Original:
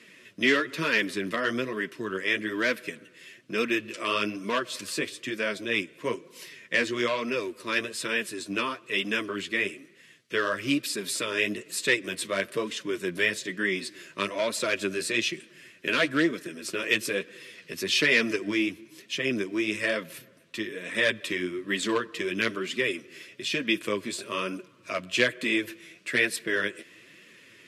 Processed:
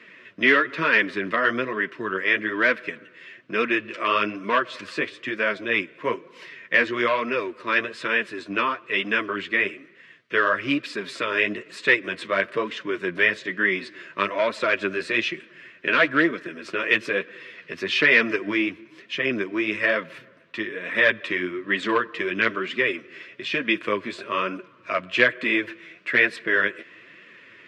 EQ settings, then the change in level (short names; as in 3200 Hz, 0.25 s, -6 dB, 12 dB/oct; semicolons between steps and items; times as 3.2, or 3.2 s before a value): tape spacing loss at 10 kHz 22 dB; bell 1500 Hz +11.5 dB 2.9 oct; 0.0 dB